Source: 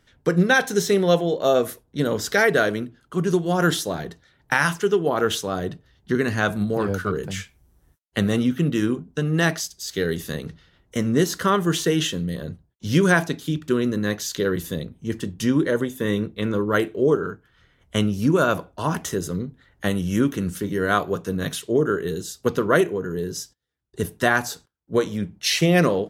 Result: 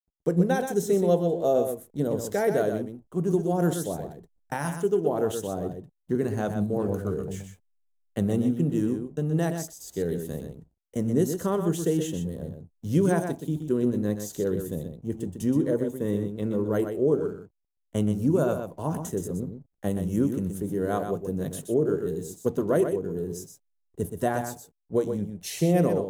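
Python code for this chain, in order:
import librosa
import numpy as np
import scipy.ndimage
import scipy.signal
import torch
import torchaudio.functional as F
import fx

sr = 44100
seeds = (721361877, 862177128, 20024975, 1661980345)

p1 = fx.backlash(x, sr, play_db=-40.5)
p2 = fx.band_shelf(p1, sr, hz=2500.0, db=-13.5, octaves=2.6)
p3 = p2 + fx.echo_single(p2, sr, ms=124, db=-7.5, dry=0)
y = p3 * 10.0 ** (-4.0 / 20.0)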